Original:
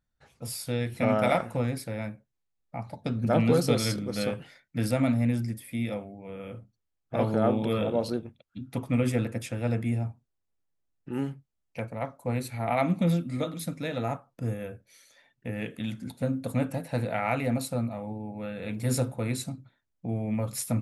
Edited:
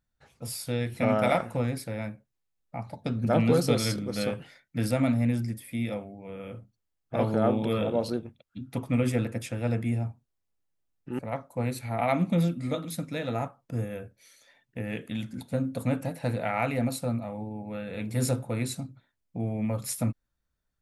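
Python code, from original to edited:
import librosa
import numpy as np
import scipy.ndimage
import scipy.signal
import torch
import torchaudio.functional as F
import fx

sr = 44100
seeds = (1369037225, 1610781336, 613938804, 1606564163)

y = fx.edit(x, sr, fx.cut(start_s=11.19, length_s=0.69), tone=tone)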